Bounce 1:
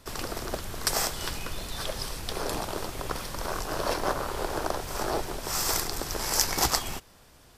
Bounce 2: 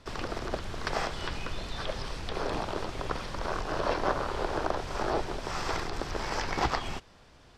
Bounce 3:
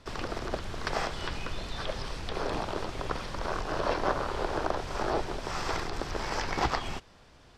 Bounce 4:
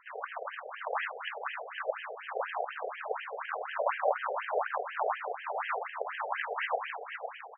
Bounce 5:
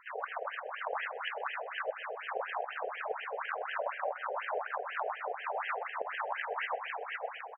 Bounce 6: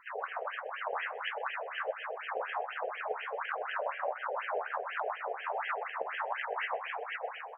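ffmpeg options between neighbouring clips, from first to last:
-filter_complex "[0:a]lowpass=4.8k,acrossover=split=3600[a][b];[b]acompressor=threshold=-45dB:ratio=4:attack=1:release=60[c];[a][c]amix=inputs=2:normalize=0"
-af anull
-af "aecho=1:1:504|1008|1512|2016|2520:0.422|0.173|0.0709|0.0291|0.0119,afftfilt=real='re*between(b*sr/1024,550*pow(2300/550,0.5+0.5*sin(2*PI*4.1*pts/sr))/1.41,550*pow(2300/550,0.5+0.5*sin(2*PI*4.1*pts/sr))*1.41)':imag='im*between(b*sr/1024,550*pow(2300/550,0.5+0.5*sin(2*PI*4.1*pts/sr))/1.41,550*pow(2300/550,0.5+0.5*sin(2*PI*4.1*pts/sr))*1.41)':win_size=1024:overlap=0.75,volume=4.5dB"
-af "acompressor=threshold=-34dB:ratio=6,aecho=1:1:127:0.0794,volume=2dB"
-af "flanger=delay=5.6:depth=8.6:regen=-39:speed=1.4:shape=triangular,volume=4.5dB"

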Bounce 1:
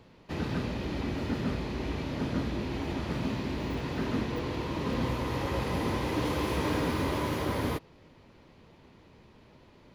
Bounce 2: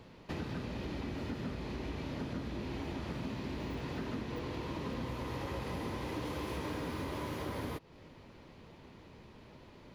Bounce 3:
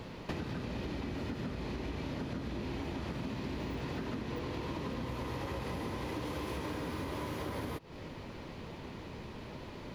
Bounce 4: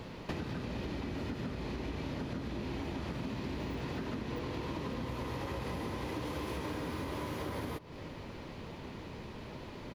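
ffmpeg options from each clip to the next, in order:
-af "acompressor=threshold=-39dB:ratio=4,volume=1.5dB"
-af "acompressor=threshold=-45dB:ratio=6,volume=9.5dB"
-filter_complex "[0:a]asplit=2[a][b];[b]adelay=583.1,volume=-19dB,highshelf=f=4k:g=-13.1[c];[a][c]amix=inputs=2:normalize=0"

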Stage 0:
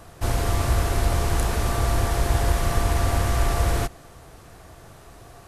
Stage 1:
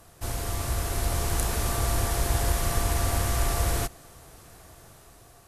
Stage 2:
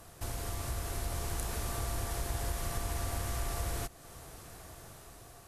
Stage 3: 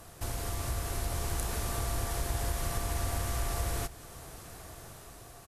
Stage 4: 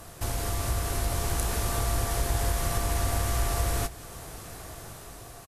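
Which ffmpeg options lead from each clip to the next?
-af "dynaudnorm=f=400:g=5:m=5dB,aemphasis=mode=production:type=cd,volume=-8.5dB"
-af "acompressor=threshold=-40dB:ratio=2"
-af "aecho=1:1:184:0.141,volume=2.5dB"
-filter_complex "[0:a]asplit=2[a][b];[b]adelay=19,volume=-13dB[c];[a][c]amix=inputs=2:normalize=0,volume=5dB"

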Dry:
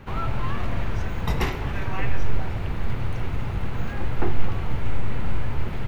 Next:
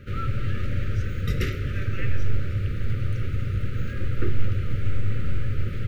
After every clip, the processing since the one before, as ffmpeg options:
-af "equalizer=f=100:t=o:w=0.48:g=9.5,afftfilt=real='re*(1-between(b*sr/4096,600,1200))':imag='im*(1-between(b*sr/4096,600,1200))':win_size=4096:overlap=0.75,volume=-2.5dB"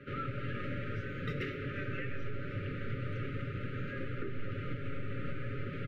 -filter_complex "[0:a]acrossover=split=160 3300:gain=0.126 1 0.0891[a][b][c];[a][b][c]amix=inputs=3:normalize=0,aecho=1:1:7.2:0.53,alimiter=level_in=1.5dB:limit=-24dB:level=0:latency=1:release=267,volume=-1.5dB,volume=-2dB"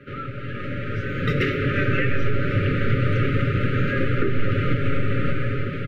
-af "dynaudnorm=f=450:g=5:m=11.5dB,volume=5.5dB"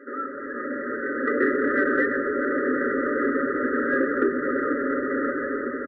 -filter_complex "[0:a]afftfilt=real='re*between(b*sr/4096,230,2000)':imag='im*between(b*sr/4096,230,2000)':win_size=4096:overlap=0.75,acontrast=62,asplit=5[a][b][c][d][e];[b]adelay=94,afreqshift=-71,volume=-23dB[f];[c]adelay=188,afreqshift=-142,volume=-27.3dB[g];[d]adelay=282,afreqshift=-213,volume=-31.6dB[h];[e]adelay=376,afreqshift=-284,volume=-35.9dB[i];[a][f][g][h][i]amix=inputs=5:normalize=0,volume=-3dB"

